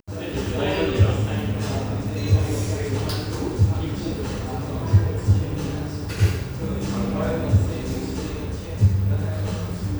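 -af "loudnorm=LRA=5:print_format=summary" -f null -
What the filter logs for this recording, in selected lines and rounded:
Input Integrated:    -23.9 LUFS
Input True Peak:      -5.2 dBTP
Input LRA:             0.8 LU
Input Threshold:     -33.9 LUFS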